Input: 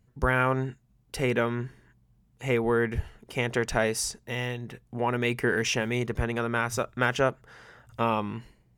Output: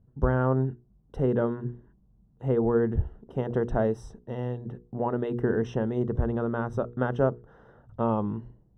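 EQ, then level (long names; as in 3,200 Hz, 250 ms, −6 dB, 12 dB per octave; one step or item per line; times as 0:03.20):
moving average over 19 samples
tilt shelving filter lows +5 dB, about 810 Hz
mains-hum notches 60/120/180/240/300/360/420/480 Hz
0.0 dB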